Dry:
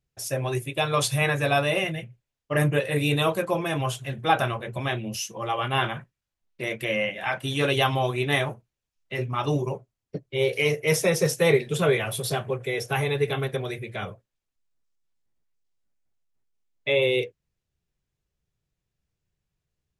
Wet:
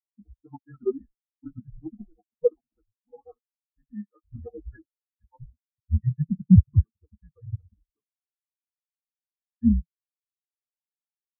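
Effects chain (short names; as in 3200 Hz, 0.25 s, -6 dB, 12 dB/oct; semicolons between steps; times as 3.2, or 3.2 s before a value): time stretch by phase-locked vocoder 0.57×; mistuned SSB -320 Hz 270–2100 Hz; spectral expander 4:1; gain +6.5 dB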